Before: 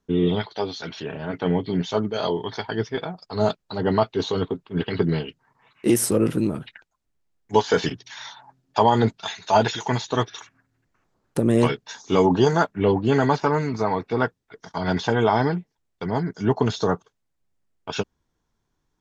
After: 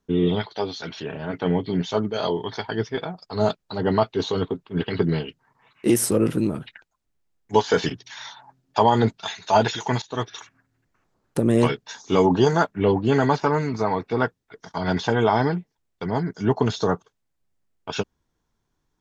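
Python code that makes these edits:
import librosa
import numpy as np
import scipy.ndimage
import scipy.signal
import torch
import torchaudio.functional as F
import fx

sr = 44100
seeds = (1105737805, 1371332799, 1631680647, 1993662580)

y = fx.edit(x, sr, fx.fade_in_from(start_s=10.02, length_s=0.33, floor_db=-15.0), tone=tone)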